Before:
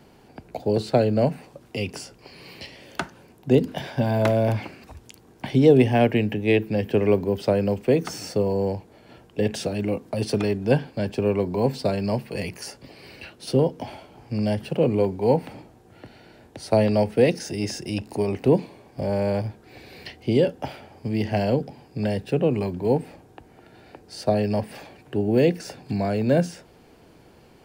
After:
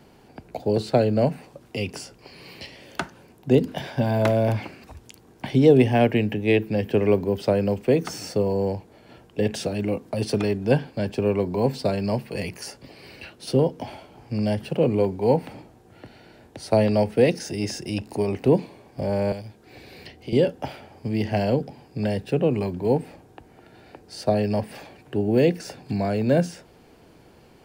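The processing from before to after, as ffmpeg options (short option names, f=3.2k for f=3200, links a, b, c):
-filter_complex "[0:a]asettb=1/sr,asplit=3[a][b][c];[a]atrim=end=19.324[d];[b]atrim=start=19.32:end=20.33,asetpts=PTS-STARTPTS,afade=t=in:d=0.004:c=qsin,afade=t=out:st=1.006:d=0.004:c=qsin,acrossover=split=180|660|2300[e][f][g][h];[e]acompressor=threshold=-43dB:ratio=3[i];[f]acompressor=threshold=-40dB:ratio=3[j];[g]acompressor=threshold=-51dB:ratio=3[k];[h]acompressor=threshold=-46dB:ratio=3[l];[i][j][k][l]amix=inputs=4:normalize=0[m];[c]atrim=start=20.326[n];[d][m]acrossfade=d=0.004:c1=hsin:c2=qsin[o];[o][n]acrossfade=d=0.004:c1=qsin:c2=hsin"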